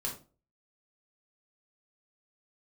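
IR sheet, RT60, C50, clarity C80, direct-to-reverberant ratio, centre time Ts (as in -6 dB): 0.35 s, 8.0 dB, 14.0 dB, -3.0 dB, 22 ms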